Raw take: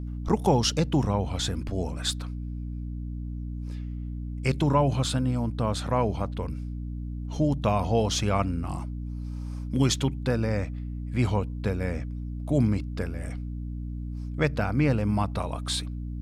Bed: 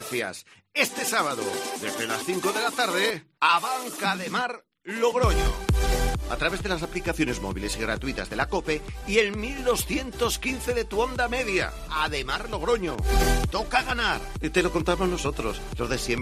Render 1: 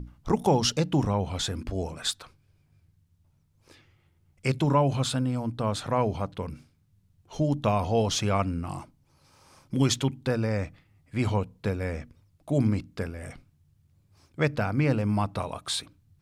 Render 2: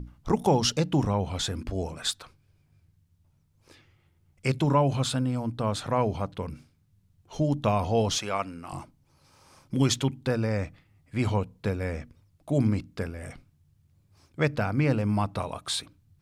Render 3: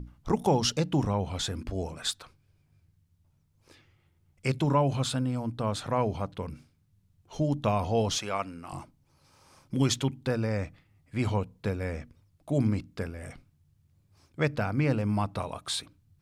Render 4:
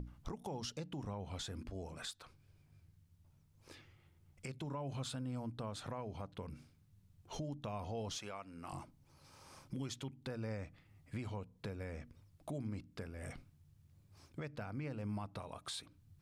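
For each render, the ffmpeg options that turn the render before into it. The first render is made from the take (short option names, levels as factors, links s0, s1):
-af "bandreject=f=60:t=h:w=6,bandreject=f=120:t=h:w=6,bandreject=f=180:t=h:w=6,bandreject=f=240:t=h:w=6,bandreject=f=300:t=h:w=6"
-filter_complex "[0:a]asettb=1/sr,asplit=3[s0][s1][s2];[s0]atrim=end=8.184[s3];[s1]atrim=start=8.18:end=8.73,asetpts=PTS-STARTPTS,afade=t=in:d=0.004:c=qsin,afade=t=out:st=0.546:d=0.004:c=qsin,highpass=f=590:p=1[s4];[s2]atrim=start=8.726[s5];[s3][s4]acrossfade=d=0.004:c1=hsin:c2=qsin[s6];[s6][s5]acrossfade=d=0.004:c1=qsin:c2=hsin"
-af "volume=0.794"
-af "acompressor=threshold=0.00631:ratio=2,alimiter=level_in=2.99:limit=0.0631:level=0:latency=1:release=295,volume=0.335"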